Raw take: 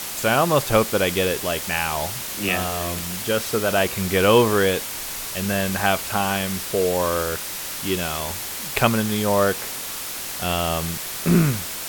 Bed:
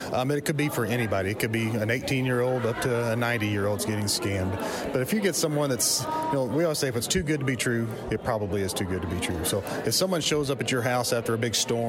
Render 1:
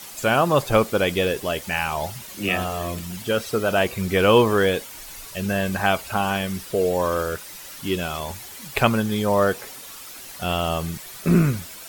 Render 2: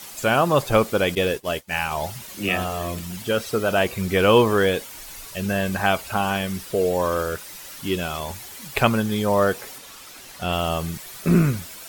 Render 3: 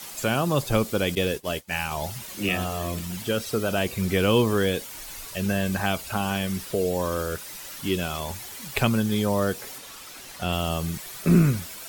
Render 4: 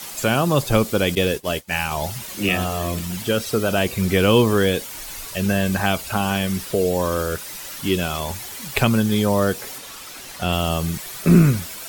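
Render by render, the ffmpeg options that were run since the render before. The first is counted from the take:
-af "afftdn=nr=11:nf=-31"
-filter_complex "[0:a]asettb=1/sr,asplit=3[s0][s1][s2];[s0]atrim=end=1.154[s3];[s1]atrim=start=1.15:end=1.91,asetpts=PTS-STARTPTS,afade=t=in:d=0.004:c=qsin,afade=t=out:st=0.756:d=0.004:c=qsin,agate=range=0.0224:threshold=0.0562:ratio=3:release=100:detection=peak[s4];[s2]atrim=start=1.906[s5];[s3][s4]acrossfade=d=0.004:c1=hsin:c2=qsin[s6];[s6][s5]acrossfade=d=0.004:c1=qsin:c2=hsin,asettb=1/sr,asplit=3[s7][s8][s9];[s7]atrim=end=9.784[s10];[s8]atrim=start=9.78:end=10.53,asetpts=PTS-STARTPTS,afade=t=in:d=0.004:c=qsin,afade=t=out:st=0.746:d=0.004:c=qsin,highshelf=f=8900:g=-7.5[s11];[s9]atrim=start=10.526[s12];[s10][s11]acrossfade=d=0.004:c1=hsin:c2=qsin[s13];[s13][s12]acrossfade=d=0.004:c1=qsin:c2=hsin"
-filter_complex "[0:a]acrossover=split=340|3000[s0][s1][s2];[s1]acompressor=threshold=0.0282:ratio=2[s3];[s0][s3][s2]amix=inputs=3:normalize=0"
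-af "volume=1.78,alimiter=limit=0.794:level=0:latency=1"

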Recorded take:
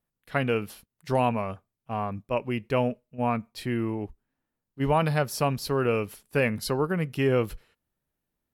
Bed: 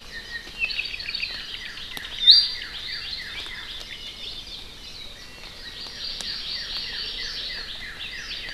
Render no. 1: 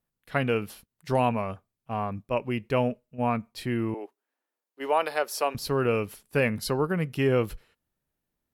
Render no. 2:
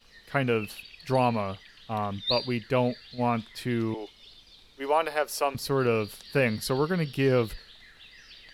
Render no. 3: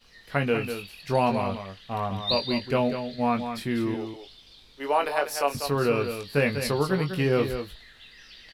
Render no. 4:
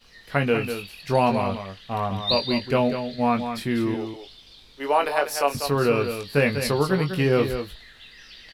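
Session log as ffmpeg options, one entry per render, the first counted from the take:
-filter_complex "[0:a]asettb=1/sr,asplit=3[s0][s1][s2];[s0]atrim=end=3.944[s3];[s1]atrim=start=3.94:end=5.55,asetpts=PTS-STARTPTS,afade=t=in:d=0.004:c=qsin,afade=t=out:st=1.606:d=0.004:c=qsin,highpass=f=370:w=0.5412,highpass=f=370:w=1.3066[s4];[s2]atrim=start=5.546[s5];[s3][s4]acrossfade=d=0.004:c1=hsin:c2=qsin[s6];[s6][s5]acrossfade=d=0.004:c1=qsin:c2=hsin"
-filter_complex "[1:a]volume=0.15[s0];[0:a][s0]amix=inputs=2:normalize=0"
-filter_complex "[0:a]asplit=2[s0][s1];[s1]adelay=21,volume=0.473[s2];[s0][s2]amix=inputs=2:normalize=0,asplit=2[s3][s4];[s4]aecho=0:1:195:0.376[s5];[s3][s5]amix=inputs=2:normalize=0"
-af "volume=1.41"

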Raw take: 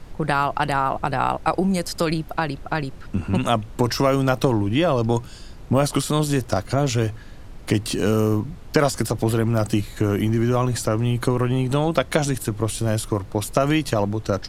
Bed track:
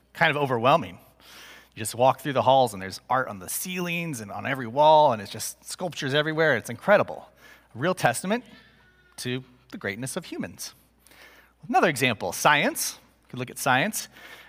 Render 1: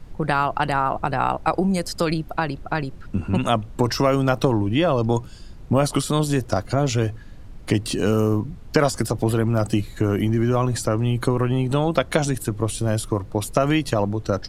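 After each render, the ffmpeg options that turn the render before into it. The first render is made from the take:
-af "afftdn=nr=6:nf=-39"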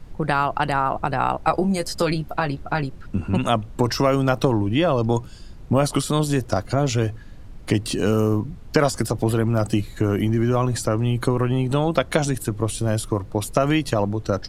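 -filter_complex "[0:a]asettb=1/sr,asplit=3[s0][s1][s2];[s0]atrim=end=1.434[s3];[s1]atrim=start=1.43:end=2.87,asetpts=PTS-STARTPTS,afade=t=in:d=0.004:c=qsin,afade=t=out:st=1.436:d=0.004:c=qsin,asplit=2[s4][s5];[s5]adelay=14,volume=0.447[s6];[s4][s6]amix=inputs=2:normalize=0,atrim=end_sample=63504[s7];[s2]atrim=start=2.866[s8];[s3][s7]acrossfade=d=0.004:c1=hsin:c2=qsin[s9];[s9][s8]acrossfade=d=0.004:c1=qsin:c2=hsin"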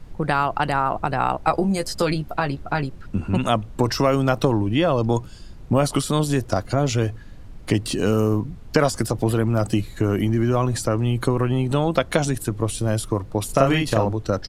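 -filter_complex "[0:a]asplit=3[s0][s1][s2];[s0]afade=t=out:st=13.48:d=0.02[s3];[s1]asplit=2[s4][s5];[s5]adelay=37,volume=0.75[s6];[s4][s6]amix=inputs=2:normalize=0,afade=t=in:st=13.48:d=0.02,afade=t=out:st=14.12:d=0.02[s7];[s2]afade=t=in:st=14.12:d=0.02[s8];[s3][s7][s8]amix=inputs=3:normalize=0"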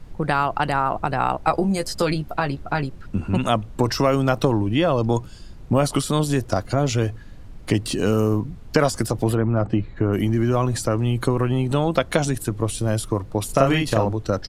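-filter_complex "[0:a]asplit=3[s0][s1][s2];[s0]afade=t=out:st=9.34:d=0.02[s3];[s1]lowpass=1900,afade=t=in:st=9.34:d=0.02,afade=t=out:st=10.12:d=0.02[s4];[s2]afade=t=in:st=10.12:d=0.02[s5];[s3][s4][s5]amix=inputs=3:normalize=0"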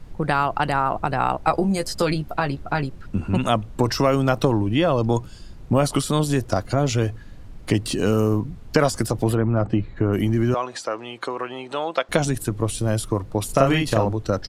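-filter_complex "[0:a]asettb=1/sr,asplit=3[s0][s1][s2];[s0]atrim=end=10.544[s3];[s1]atrim=start=10.54:end=12.09,asetpts=PTS-STARTPTS,afade=t=in:d=0.004:c=qsin,afade=t=out:st=1.546:d=0.004:c=qsin,highpass=560,lowpass=5300[s4];[s2]atrim=start=12.086[s5];[s3][s4]acrossfade=d=0.004:c1=hsin:c2=qsin[s6];[s6][s5]acrossfade=d=0.004:c1=qsin:c2=hsin"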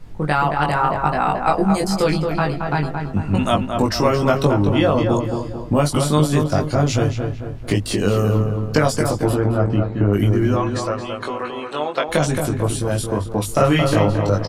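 -filter_complex "[0:a]asplit=2[s0][s1];[s1]adelay=20,volume=0.75[s2];[s0][s2]amix=inputs=2:normalize=0,asplit=2[s3][s4];[s4]adelay=223,lowpass=f=2200:p=1,volume=0.562,asplit=2[s5][s6];[s6]adelay=223,lowpass=f=2200:p=1,volume=0.49,asplit=2[s7][s8];[s8]adelay=223,lowpass=f=2200:p=1,volume=0.49,asplit=2[s9][s10];[s10]adelay=223,lowpass=f=2200:p=1,volume=0.49,asplit=2[s11][s12];[s12]adelay=223,lowpass=f=2200:p=1,volume=0.49,asplit=2[s13][s14];[s14]adelay=223,lowpass=f=2200:p=1,volume=0.49[s15];[s3][s5][s7][s9][s11][s13][s15]amix=inputs=7:normalize=0"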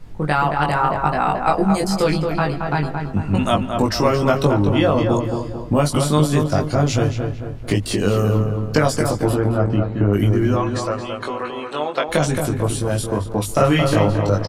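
-filter_complex "[0:a]asplit=2[s0][s1];[s1]adelay=145.8,volume=0.0631,highshelf=f=4000:g=-3.28[s2];[s0][s2]amix=inputs=2:normalize=0"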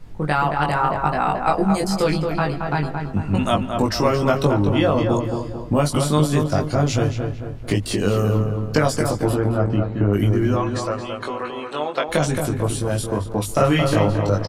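-af "volume=0.841"

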